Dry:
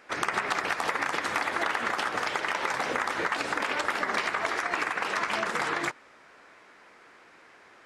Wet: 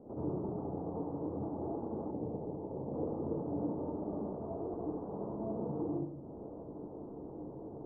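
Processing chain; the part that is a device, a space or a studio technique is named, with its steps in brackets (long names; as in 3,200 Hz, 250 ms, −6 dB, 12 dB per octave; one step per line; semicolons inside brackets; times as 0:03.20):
television next door (downward compressor 4 to 1, threshold −46 dBFS, peak gain reduction 19 dB; low-pass filter 300 Hz 12 dB per octave; convolution reverb RT60 0.75 s, pre-delay 58 ms, DRR −7.5 dB)
Butterworth low-pass 930 Hz 36 dB per octave
0:02.11–0:02.94: Bessel low-pass filter 670 Hz, order 2
level +14 dB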